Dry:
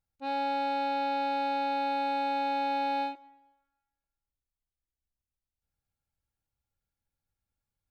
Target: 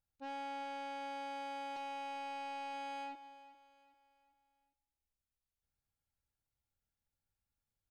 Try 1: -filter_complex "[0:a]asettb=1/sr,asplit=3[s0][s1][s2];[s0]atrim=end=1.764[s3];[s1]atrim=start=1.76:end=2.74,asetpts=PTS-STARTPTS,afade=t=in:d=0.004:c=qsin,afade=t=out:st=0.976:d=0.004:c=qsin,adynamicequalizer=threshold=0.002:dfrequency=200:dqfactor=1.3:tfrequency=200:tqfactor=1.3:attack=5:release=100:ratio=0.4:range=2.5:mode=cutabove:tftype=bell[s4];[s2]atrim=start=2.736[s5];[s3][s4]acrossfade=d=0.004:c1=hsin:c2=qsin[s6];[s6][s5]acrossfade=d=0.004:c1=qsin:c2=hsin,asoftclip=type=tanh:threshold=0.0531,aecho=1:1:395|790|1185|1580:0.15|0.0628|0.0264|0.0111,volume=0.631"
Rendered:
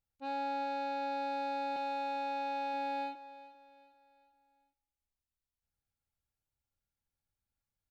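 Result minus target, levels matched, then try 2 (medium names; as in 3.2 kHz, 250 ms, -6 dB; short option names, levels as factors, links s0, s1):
saturation: distortion -13 dB
-filter_complex "[0:a]asettb=1/sr,asplit=3[s0][s1][s2];[s0]atrim=end=1.764[s3];[s1]atrim=start=1.76:end=2.74,asetpts=PTS-STARTPTS,afade=t=in:d=0.004:c=qsin,afade=t=out:st=0.976:d=0.004:c=qsin,adynamicequalizer=threshold=0.002:dfrequency=200:dqfactor=1.3:tfrequency=200:tqfactor=1.3:attack=5:release=100:ratio=0.4:range=2.5:mode=cutabove:tftype=bell[s4];[s2]atrim=start=2.736[s5];[s3][s4]acrossfade=d=0.004:c1=hsin:c2=qsin[s6];[s6][s5]acrossfade=d=0.004:c1=qsin:c2=hsin,asoftclip=type=tanh:threshold=0.0133,aecho=1:1:395|790|1185|1580:0.15|0.0628|0.0264|0.0111,volume=0.631"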